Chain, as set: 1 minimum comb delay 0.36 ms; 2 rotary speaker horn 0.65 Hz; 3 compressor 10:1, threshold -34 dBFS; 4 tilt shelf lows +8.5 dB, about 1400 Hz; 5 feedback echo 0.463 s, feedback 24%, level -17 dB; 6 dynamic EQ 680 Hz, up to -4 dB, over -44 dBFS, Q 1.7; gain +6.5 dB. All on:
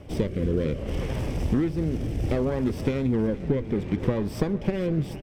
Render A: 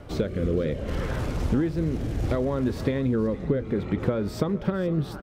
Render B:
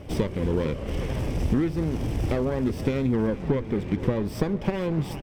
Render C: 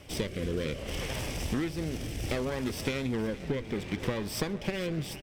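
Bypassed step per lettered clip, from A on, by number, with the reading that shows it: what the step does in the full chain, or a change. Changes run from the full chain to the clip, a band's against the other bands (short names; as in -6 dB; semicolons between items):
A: 1, crest factor change +1.5 dB; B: 2, 1 kHz band +2.5 dB; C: 4, 4 kHz band +12.0 dB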